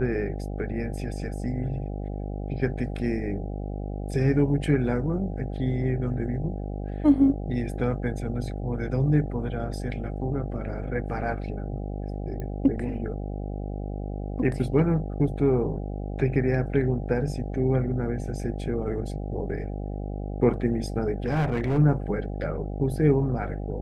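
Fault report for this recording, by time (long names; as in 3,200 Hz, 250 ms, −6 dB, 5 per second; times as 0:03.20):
mains buzz 50 Hz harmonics 16 −32 dBFS
0:12.40: click −23 dBFS
0:21.26–0:21.79: clipping −20.5 dBFS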